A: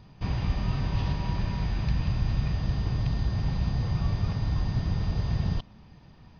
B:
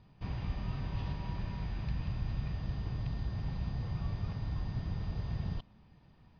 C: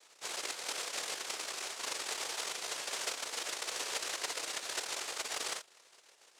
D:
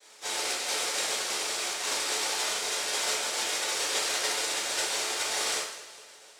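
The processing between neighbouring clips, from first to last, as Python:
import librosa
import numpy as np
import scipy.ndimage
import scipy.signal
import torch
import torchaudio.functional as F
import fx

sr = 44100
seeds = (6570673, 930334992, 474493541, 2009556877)

y1 = scipy.signal.sosfilt(scipy.signal.butter(2, 4700.0, 'lowpass', fs=sr, output='sos'), x)
y1 = F.gain(torch.from_numpy(y1), -9.0).numpy()
y2 = fx.noise_vocoder(y1, sr, seeds[0], bands=1)
y2 = fx.low_shelf_res(y2, sr, hz=290.0, db=-12.5, q=1.5)
y2 = fx.mod_noise(y2, sr, seeds[1], snr_db=31)
y3 = fx.echo_feedback(y2, sr, ms=205, feedback_pct=55, wet_db=-17.0)
y3 = fx.rev_double_slope(y3, sr, seeds[2], early_s=0.6, late_s=1.5, knee_db=-18, drr_db=-8.0)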